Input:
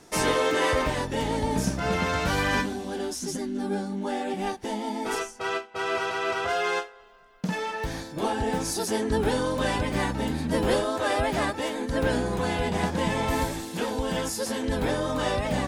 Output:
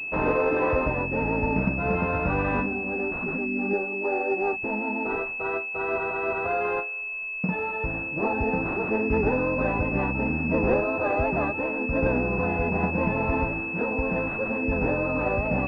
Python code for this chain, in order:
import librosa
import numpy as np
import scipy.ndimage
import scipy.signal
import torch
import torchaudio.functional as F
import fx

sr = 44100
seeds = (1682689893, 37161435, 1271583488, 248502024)

y = fx.low_shelf_res(x, sr, hz=290.0, db=-7.5, q=3.0, at=(3.73, 4.53))
y = fx.pwm(y, sr, carrier_hz=2600.0)
y = y * 10.0 ** (1.5 / 20.0)